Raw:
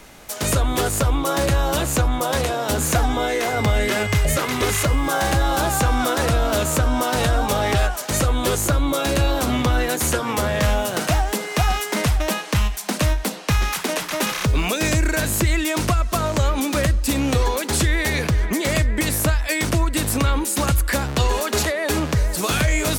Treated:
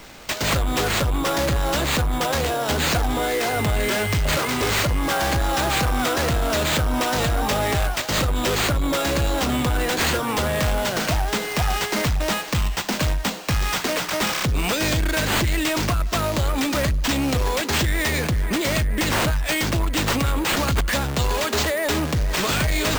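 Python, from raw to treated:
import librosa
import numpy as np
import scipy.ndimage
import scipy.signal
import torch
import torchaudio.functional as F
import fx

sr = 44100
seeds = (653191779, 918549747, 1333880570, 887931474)

p1 = fx.high_shelf(x, sr, hz=10000.0, db=10.5)
p2 = 10.0 ** (-20.5 / 20.0) * (np.abs((p1 / 10.0 ** (-20.5 / 20.0) + 3.0) % 4.0 - 2.0) - 1.0)
p3 = p1 + F.gain(torch.from_numpy(p2), -4.0).numpy()
p4 = fx.sample_hold(p3, sr, seeds[0], rate_hz=11000.0, jitter_pct=0)
y = F.gain(torch.from_numpy(p4), -3.5).numpy()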